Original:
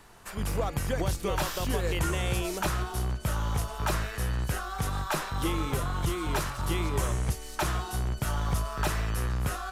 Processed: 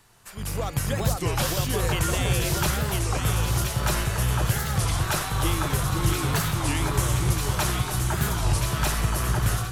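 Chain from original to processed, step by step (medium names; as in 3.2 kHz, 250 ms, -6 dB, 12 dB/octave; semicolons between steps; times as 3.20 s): treble shelf 2.3 kHz +8.5 dB; on a send: echo whose repeats swap between lows and highs 511 ms, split 1.8 kHz, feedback 77%, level -2 dB; on the sum: level rider gain up to 8 dB; peaking EQ 120 Hz +8.5 dB 0.72 oct; warped record 33 1/3 rpm, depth 250 cents; trim -8 dB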